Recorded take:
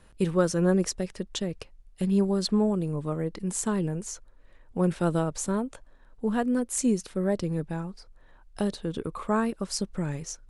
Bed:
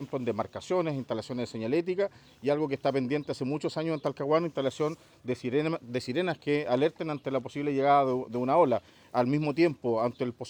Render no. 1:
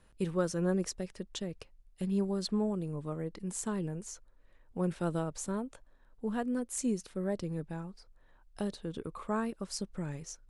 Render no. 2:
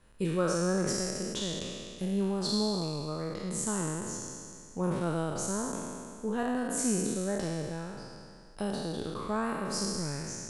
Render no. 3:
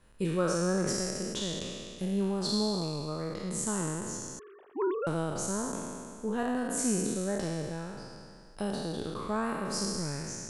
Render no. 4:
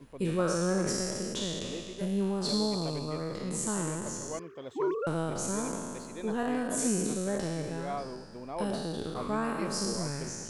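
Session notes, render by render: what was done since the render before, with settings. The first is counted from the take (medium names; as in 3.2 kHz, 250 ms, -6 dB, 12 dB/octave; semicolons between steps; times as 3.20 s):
trim -7.5 dB
spectral sustain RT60 2.19 s
4.39–5.07 s: formants replaced by sine waves
add bed -14 dB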